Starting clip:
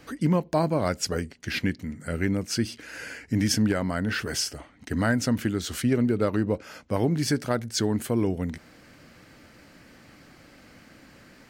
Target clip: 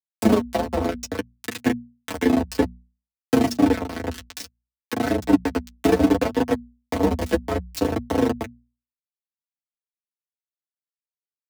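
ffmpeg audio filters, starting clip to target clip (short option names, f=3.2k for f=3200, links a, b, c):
-filter_complex "[0:a]asettb=1/sr,asplit=3[a][b][c];[a]atrim=end=1.034[d];[b]atrim=start=1.03:end=3.37,asetpts=PTS-STARTPTS,afade=t=in:d=0.004:c=qsin,afade=t=out:st=2.336:d=0.004:c=qsin,aeval=exprs='val(0)+0.5*0.0224*sgn(val(0))':c=same[e];[c]atrim=start=3.366[f];[d][e]acrossfade=d=0.004:c1=hsin:c2=qsin[g];[g][f]acrossfade=d=0.004:c1=qsin:c2=hsin,highpass=f=89:p=1,tremolo=f=27:d=0.571,acontrast=26,aeval=exprs='val(0)*gte(abs(val(0)),0.133)':c=same,acrossover=split=460[h][i];[i]acompressor=threshold=-33dB:ratio=5[j];[h][j]amix=inputs=2:normalize=0,aeval=exprs='0.376*(cos(1*acos(clip(val(0)/0.376,-1,1)))-cos(1*PI/2))+0.0266*(cos(7*acos(clip(val(0)/0.376,-1,1)))-cos(7*PI/2))':c=same,aecho=1:1:4.8:0.83,afreqshift=58,flanger=delay=8.3:depth=3.6:regen=11:speed=0.61:shape=sinusoidal,bandreject=f=60:t=h:w=6,bandreject=f=120:t=h:w=6,bandreject=f=180:t=h:w=6,bandreject=f=240:t=h:w=6,adynamicequalizer=threshold=0.00178:dfrequency=5900:dqfactor=0.7:tfrequency=5900:tqfactor=0.7:attack=5:release=100:ratio=0.375:range=3:mode=cutabove:tftype=highshelf,volume=8.5dB"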